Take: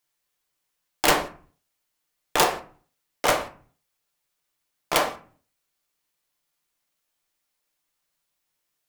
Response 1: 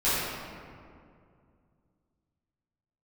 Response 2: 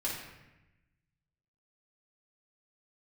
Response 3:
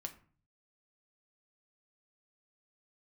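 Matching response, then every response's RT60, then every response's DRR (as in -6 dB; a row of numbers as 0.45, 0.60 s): 3; 2.3, 1.0, 0.45 s; -14.0, -7.0, 4.5 dB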